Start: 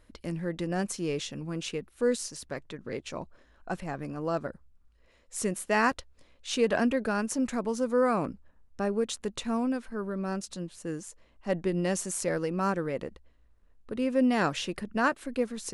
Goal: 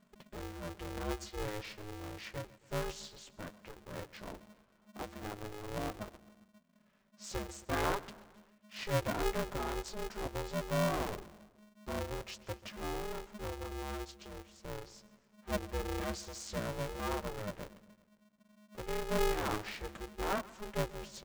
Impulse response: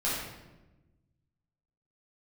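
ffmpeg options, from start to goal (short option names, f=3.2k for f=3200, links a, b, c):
-af "highshelf=f=6.2k:g=-5.5,bandreject=f=60:t=h:w=6,bandreject=f=120:t=h:w=6,bandreject=f=180:t=h:w=6,asetrate=32667,aresample=44100,flanger=delay=5.2:depth=7.9:regen=-14:speed=0.14:shape=sinusoidal,aecho=1:1:134|268|402|536:0.1|0.055|0.0303|0.0166,aeval=exprs='val(0)*sgn(sin(2*PI*210*n/s))':c=same,volume=-5.5dB"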